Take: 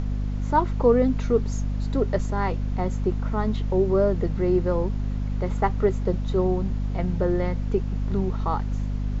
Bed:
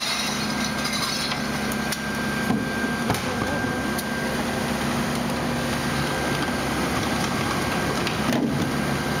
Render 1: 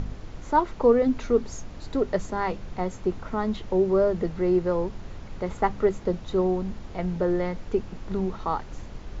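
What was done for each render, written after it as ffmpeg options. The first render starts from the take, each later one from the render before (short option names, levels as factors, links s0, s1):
-af "bandreject=f=50:t=h:w=4,bandreject=f=100:t=h:w=4,bandreject=f=150:t=h:w=4,bandreject=f=200:t=h:w=4,bandreject=f=250:t=h:w=4"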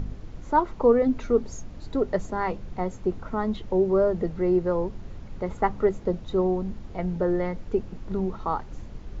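-af "afftdn=nr=6:nf=-41"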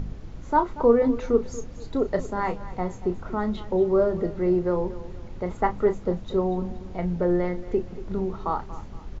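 -filter_complex "[0:a]asplit=2[s0][s1];[s1]adelay=34,volume=0.316[s2];[s0][s2]amix=inputs=2:normalize=0,aecho=1:1:234|468|702:0.158|0.0571|0.0205"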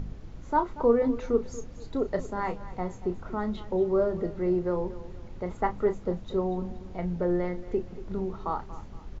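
-af "volume=0.631"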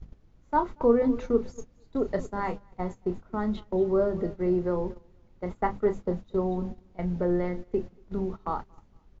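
-af "adynamicequalizer=threshold=0.0126:dfrequency=220:dqfactor=2:tfrequency=220:tqfactor=2:attack=5:release=100:ratio=0.375:range=1.5:mode=boostabove:tftype=bell,agate=range=0.158:threshold=0.0224:ratio=16:detection=peak"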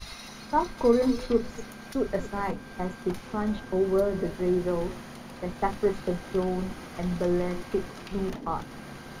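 -filter_complex "[1:a]volume=0.126[s0];[0:a][s0]amix=inputs=2:normalize=0"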